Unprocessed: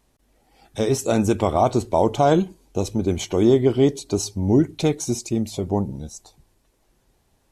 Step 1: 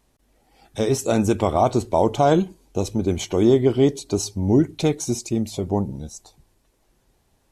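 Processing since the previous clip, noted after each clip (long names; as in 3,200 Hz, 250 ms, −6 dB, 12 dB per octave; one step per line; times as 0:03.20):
no processing that can be heard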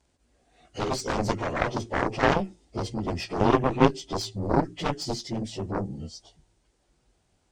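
partials spread apart or drawn together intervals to 92%
harmonic generator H 3 −8 dB, 4 −21 dB, 5 −28 dB, 7 −21 dB, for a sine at −6.5 dBFS
level +2.5 dB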